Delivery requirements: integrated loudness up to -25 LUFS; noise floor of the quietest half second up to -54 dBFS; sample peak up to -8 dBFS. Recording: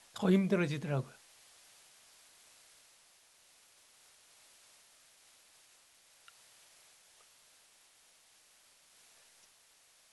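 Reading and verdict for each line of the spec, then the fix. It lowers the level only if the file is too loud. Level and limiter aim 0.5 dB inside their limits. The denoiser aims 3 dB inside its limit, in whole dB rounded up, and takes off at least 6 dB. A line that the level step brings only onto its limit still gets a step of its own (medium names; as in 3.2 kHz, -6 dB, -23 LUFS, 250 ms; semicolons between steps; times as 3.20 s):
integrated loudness -32.5 LUFS: pass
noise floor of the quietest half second -66 dBFS: pass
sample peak -17.0 dBFS: pass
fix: none needed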